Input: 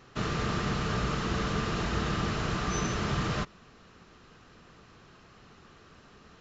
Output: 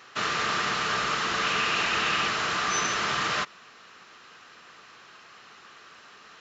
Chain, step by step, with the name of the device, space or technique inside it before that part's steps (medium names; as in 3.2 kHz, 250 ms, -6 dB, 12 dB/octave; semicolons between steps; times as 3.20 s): filter by subtraction (in parallel: low-pass 1.7 kHz 12 dB/octave + polarity flip); 1.43–2.28 s: on the sum: peaking EQ 2.6 kHz +7 dB 0.41 oct; trim +7.5 dB